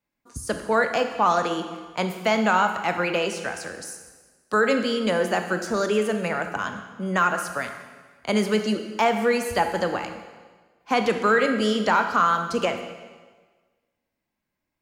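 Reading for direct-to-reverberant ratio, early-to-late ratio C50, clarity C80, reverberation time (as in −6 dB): 6.5 dB, 8.0 dB, 9.5 dB, 1.4 s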